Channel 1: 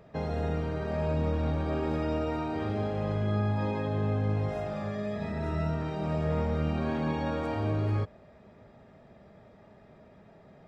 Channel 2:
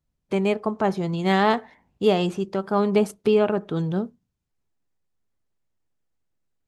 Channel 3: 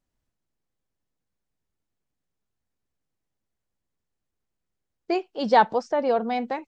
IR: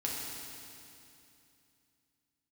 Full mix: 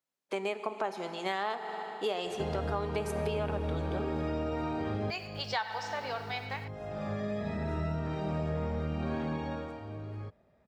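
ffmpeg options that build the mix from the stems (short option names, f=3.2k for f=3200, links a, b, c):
-filter_complex "[0:a]adelay=2250,afade=t=out:st=9.12:d=0.67:silence=0.237137[a];[1:a]highpass=510,volume=-4dB,asplit=2[b][c];[c]volume=-11.5dB[d];[2:a]highpass=1.5k,acrusher=bits=10:mix=0:aa=0.000001,volume=-2dB,asplit=4[e][f][g][h];[f]volume=-9dB[i];[g]volume=-11.5dB[j];[h]apad=whole_len=569935[k];[a][k]sidechaincompress=threshold=-50dB:ratio=12:attack=11:release=484[l];[3:a]atrim=start_sample=2205[m];[d][i]amix=inputs=2:normalize=0[n];[n][m]afir=irnorm=-1:irlink=0[o];[j]aecho=0:1:101:1[p];[l][b][e][o][p]amix=inputs=5:normalize=0,acompressor=threshold=-29dB:ratio=6"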